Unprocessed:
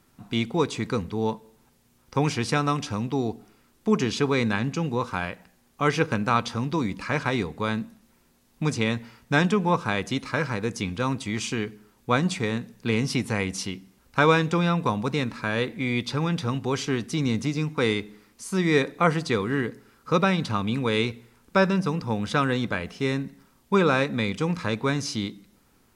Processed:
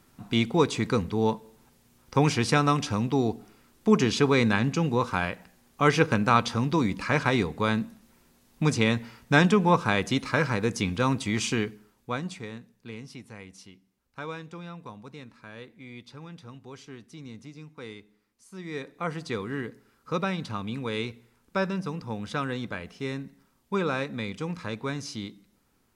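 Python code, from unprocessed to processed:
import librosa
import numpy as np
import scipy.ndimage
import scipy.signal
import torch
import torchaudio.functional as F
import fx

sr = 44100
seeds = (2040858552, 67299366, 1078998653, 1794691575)

y = fx.gain(x, sr, db=fx.line((11.58, 1.5), (12.14, -9.0), (13.12, -18.0), (18.49, -18.0), (19.33, -7.0)))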